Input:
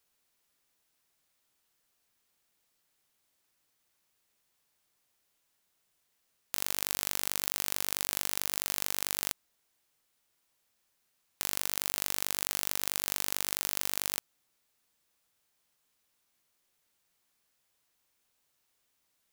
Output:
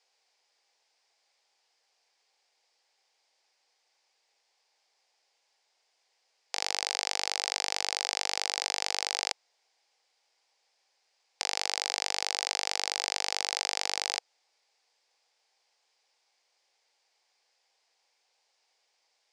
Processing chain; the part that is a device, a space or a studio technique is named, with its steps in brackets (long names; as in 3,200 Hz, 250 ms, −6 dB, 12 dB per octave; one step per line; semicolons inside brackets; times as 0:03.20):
phone speaker on a table (loudspeaker in its box 420–7,100 Hz, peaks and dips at 490 Hz +4 dB, 800 Hz +9 dB, 1,300 Hz −5 dB, 2,200 Hz +4 dB, 4,900 Hz +8 dB)
level +3.5 dB